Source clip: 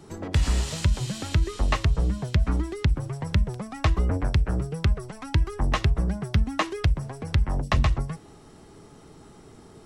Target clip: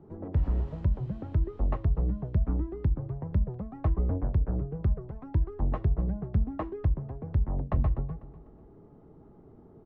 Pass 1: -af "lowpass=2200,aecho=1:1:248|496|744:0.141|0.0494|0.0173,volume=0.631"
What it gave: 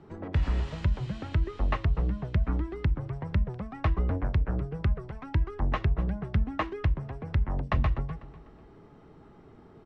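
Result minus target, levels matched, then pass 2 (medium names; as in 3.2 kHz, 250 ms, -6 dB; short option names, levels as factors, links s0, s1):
2 kHz band +14.0 dB
-af "lowpass=720,aecho=1:1:248|496|744:0.141|0.0494|0.0173,volume=0.631"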